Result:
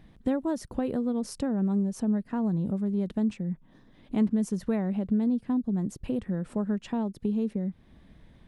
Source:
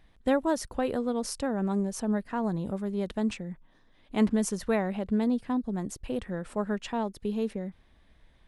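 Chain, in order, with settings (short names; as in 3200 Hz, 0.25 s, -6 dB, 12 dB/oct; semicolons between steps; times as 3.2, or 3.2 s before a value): bell 180 Hz +13 dB 2.4 oct; compressor 2:1, threshold -35 dBFS, peak gain reduction 15 dB; gain +1.5 dB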